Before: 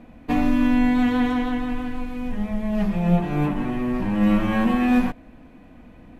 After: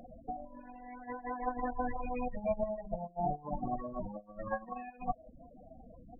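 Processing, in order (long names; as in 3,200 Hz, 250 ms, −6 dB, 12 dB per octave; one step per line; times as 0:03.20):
soft clipping −13 dBFS, distortion −19 dB
spectral peaks only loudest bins 16
compressor whose output falls as the input rises −27 dBFS, ratio −0.5
0:01.10–0:03.59: parametric band 1,300 Hz −9 dB 0.21 octaves
reverb reduction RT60 0.55 s
low shelf with overshoot 460 Hz −9 dB, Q 3
level −2 dB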